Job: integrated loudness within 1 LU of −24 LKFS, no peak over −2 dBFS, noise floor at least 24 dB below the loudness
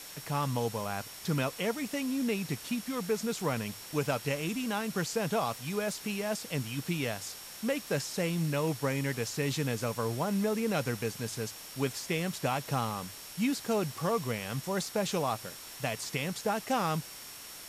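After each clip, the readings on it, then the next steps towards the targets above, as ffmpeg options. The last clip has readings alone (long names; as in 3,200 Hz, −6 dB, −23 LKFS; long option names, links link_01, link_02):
interfering tone 5,500 Hz; level of the tone −52 dBFS; background noise floor −46 dBFS; target noise floor −57 dBFS; integrated loudness −33.0 LKFS; sample peak −17.0 dBFS; target loudness −24.0 LKFS
→ -af "bandreject=frequency=5500:width=30"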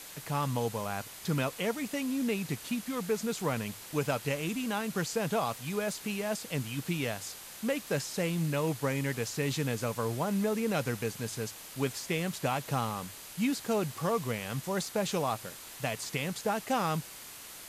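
interfering tone none found; background noise floor −47 dBFS; target noise floor −57 dBFS
→ -af "afftdn=noise_reduction=10:noise_floor=-47"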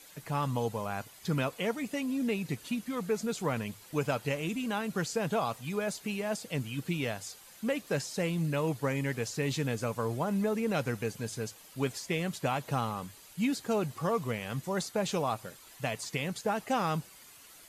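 background noise floor −54 dBFS; target noise floor −57 dBFS
→ -af "afftdn=noise_reduction=6:noise_floor=-54"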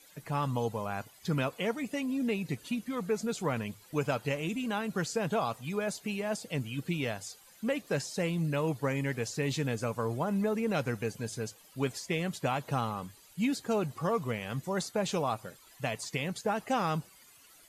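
background noise floor −58 dBFS; integrated loudness −33.5 LKFS; sample peak −17.5 dBFS; target loudness −24.0 LKFS
→ -af "volume=9.5dB"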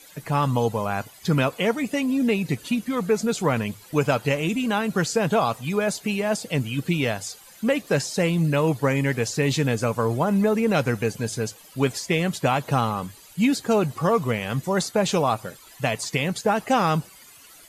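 integrated loudness −24.0 LKFS; sample peak −8.0 dBFS; background noise floor −49 dBFS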